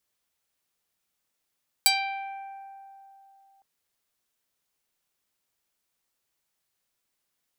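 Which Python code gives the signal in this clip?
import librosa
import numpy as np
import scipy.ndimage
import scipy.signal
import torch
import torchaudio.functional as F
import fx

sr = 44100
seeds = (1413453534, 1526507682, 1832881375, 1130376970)

y = fx.pluck(sr, length_s=1.76, note=79, decay_s=3.21, pick=0.44, brightness='medium')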